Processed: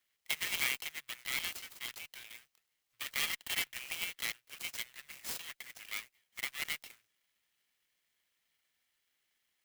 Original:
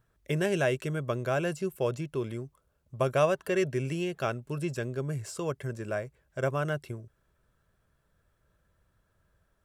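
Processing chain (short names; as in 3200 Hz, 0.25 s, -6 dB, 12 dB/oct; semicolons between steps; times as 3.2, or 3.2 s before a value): minimum comb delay 0.98 ms; inverse Chebyshev high-pass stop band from 820 Hz, stop band 50 dB; in parallel at -9.5 dB: bit-crush 6-bit; on the sum: clock jitter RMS 0.033 ms; gain +5 dB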